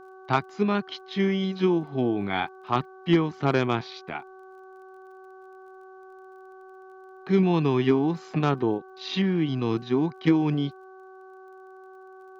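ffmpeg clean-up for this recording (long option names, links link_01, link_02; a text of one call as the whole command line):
ffmpeg -i in.wav -af "adeclick=threshold=4,bandreject=frequency=377.9:width_type=h:width=4,bandreject=frequency=755.8:width_type=h:width=4,bandreject=frequency=1133.7:width_type=h:width=4,bandreject=frequency=1511.6:width_type=h:width=4" out.wav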